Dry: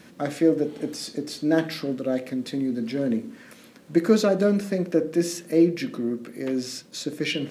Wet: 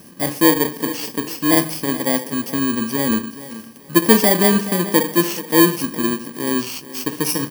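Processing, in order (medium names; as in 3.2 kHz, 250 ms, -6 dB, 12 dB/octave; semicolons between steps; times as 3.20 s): bit-reversed sample order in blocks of 32 samples; feedback delay 426 ms, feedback 29%, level -15.5 dB; trim +6 dB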